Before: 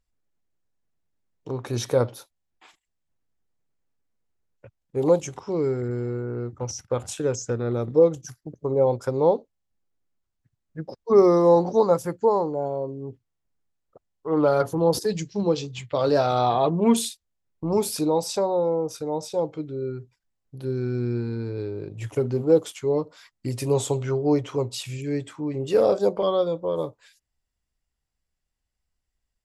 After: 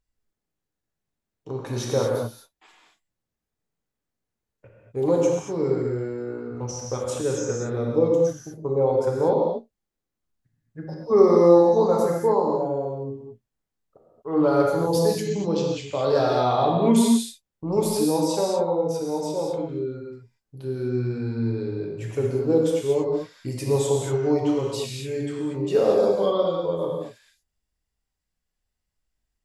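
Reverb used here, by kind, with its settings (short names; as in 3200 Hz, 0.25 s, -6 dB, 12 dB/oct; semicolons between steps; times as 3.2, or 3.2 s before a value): non-linear reverb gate 0.26 s flat, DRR -2 dB; gain -3.5 dB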